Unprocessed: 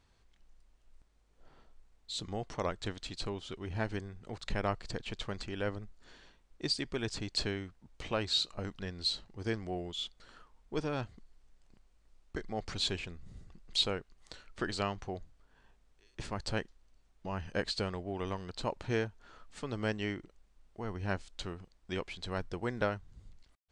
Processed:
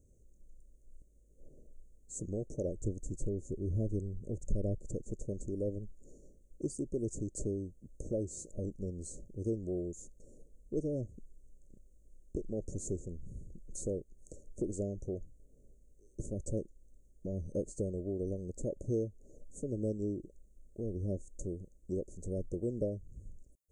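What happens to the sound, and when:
2.75–4.78 low shelf 160 Hz +7.5 dB
whole clip: Chebyshev band-stop 580–6500 Hz, order 5; dynamic EQ 340 Hz, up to +3 dB, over -50 dBFS, Q 5; compressor 1.5:1, threshold -45 dBFS; gain +5.5 dB

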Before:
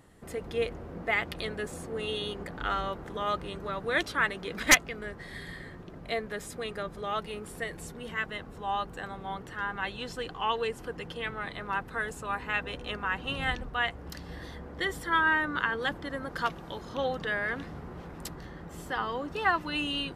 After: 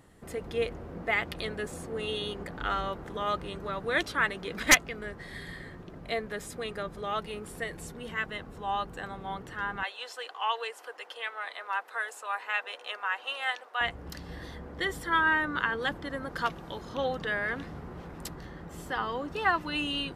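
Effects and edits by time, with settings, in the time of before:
9.83–13.81 HPF 560 Hz 24 dB/oct

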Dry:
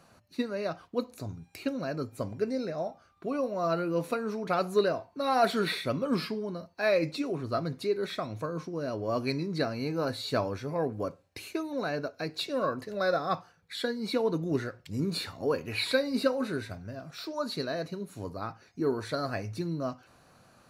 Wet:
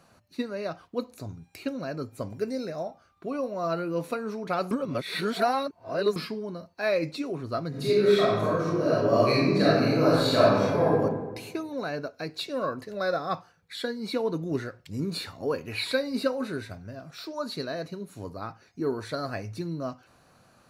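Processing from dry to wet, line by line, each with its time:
2.3–2.83 high shelf 7900 Hz +11.5 dB
4.71–6.16 reverse
7.69–10.98 reverb throw, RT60 1.3 s, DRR -9 dB

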